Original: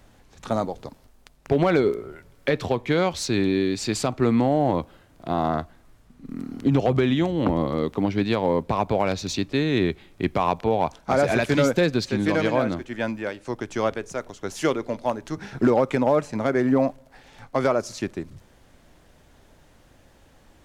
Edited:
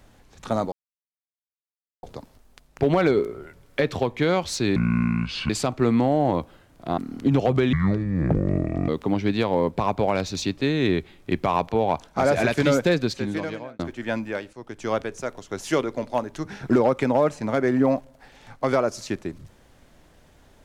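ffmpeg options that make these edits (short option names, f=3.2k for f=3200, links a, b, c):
-filter_complex "[0:a]asplit=9[a][b][c][d][e][f][g][h][i];[a]atrim=end=0.72,asetpts=PTS-STARTPTS,afade=t=out:st=0.716:d=0.004:c=hsin,apad=pad_dur=1.31[j];[b]atrim=start=0.72:end=3.454,asetpts=PTS-STARTPTS,afade=t=in:d=0.004:c=hsin[k];[c]atrim=start=3.45:end=3.9,asetpts=PTS-STARTPTS,asetrate=26901,aresample=44100[l];[d]atrim=start=3.896:end=5.382[m];[e]atrim=start=6.378:end=7.134[n];[f]atrim=start=7.13:end=7.8,asetpts=PTS-STARTPTS,asetrate=25578,aresample=44100,atrim=end_sample=50943,asetpts=PTS-STARTPTS[o];[g]atrim=start=7.796:end=12.71,asetpts=PTS-STARTPTS,afade=t=out:st=4.094:d=0.82[p];[h]atrim=start=12.71:end=13.45,asetpts=PTS-STARTPTS,afade=t=in:d=0.004:c=hsin,afade=t=out:st=0.736:d=0.004:c=hsin:silence=0.188365[q];[i]atrim=start=13.45,asetpts=PTS-STARTPTS,afade=t=in:d=0.47:silence=0.188365[r];[j][k]concat=n=2:v=0:a=1[s];[s][l]acrossfade=d=0.004:c1=hsin:c2=hsin[t];[t][m]acrossfade=d=0.004:c1=hsin:c2=hsin[u];[u][n]acrossfade=d=0.004:c1=hsin:c2=hsin[v];[v][o]acrossfade=d=0.004:c1=hsin:c2=hsin[w];[p][q][r]concat=n=3:v=0:a=1[x];[w][x]acrossfade=d=0.004:c1=hsin:c2=hsin"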